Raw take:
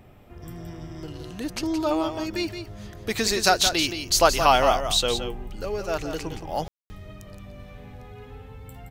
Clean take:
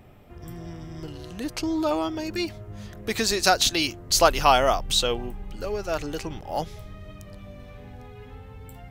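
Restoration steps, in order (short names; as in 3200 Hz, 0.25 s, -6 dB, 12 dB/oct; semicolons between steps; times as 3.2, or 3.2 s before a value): room tone fill 6.68–6.9; inverse comb 0.171 s -8.5 dB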